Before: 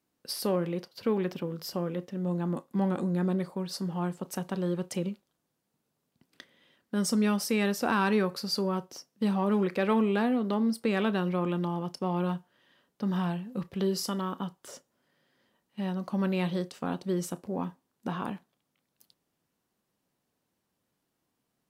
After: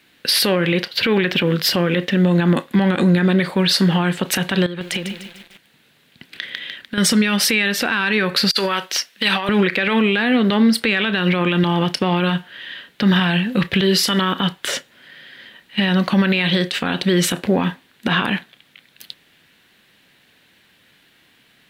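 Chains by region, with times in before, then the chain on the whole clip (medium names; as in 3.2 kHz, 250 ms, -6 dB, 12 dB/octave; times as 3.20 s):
4.66–6.98 s: compression, threshold -44 dBFS + bit-crushed delay 149 ms, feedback 55%, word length 10-bit, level -9 dB
8.51–9.49 s: high-pass 1.3 kHz 6 dB/octave + compressor with a negative ratio -40 dBFS, ratio -0.5
whole clip: high-order bell 2.5 kHz +14.5 dB; compression, threshold -28 dBFS; loudness maximiser +25 dB; trim -6 dB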